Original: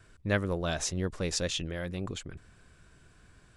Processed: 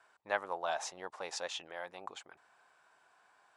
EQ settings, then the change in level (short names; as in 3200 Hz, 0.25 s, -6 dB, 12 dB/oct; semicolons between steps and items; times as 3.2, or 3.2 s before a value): band-pass 830 Hz, Q 4.3; tilt +4.5 dB/oct; +9.0 dB